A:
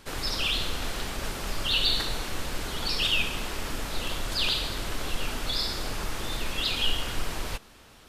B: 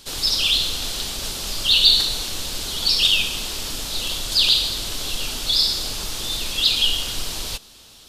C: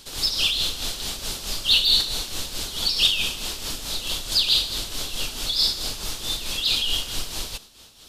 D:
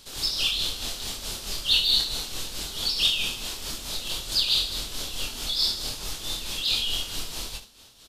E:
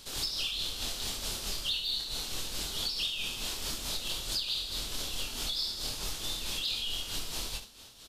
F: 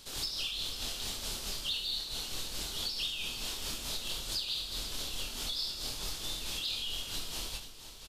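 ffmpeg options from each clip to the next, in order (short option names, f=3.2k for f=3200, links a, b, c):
-af "highshelf=f=2.7k:t=q:w=1.5:g=10"
-af "asoftclip=type=tanh:threshold=-5.5dB,tremolo=f=4.6:d=0.57"
-af "aecho=1:1:25|72:0.562|0.237,volume=-4.5dB"
-af "acompressor=threshold=-31dB:ratio=6"
-af "aecho=1:1:492:0.251,volume=-2.5dB"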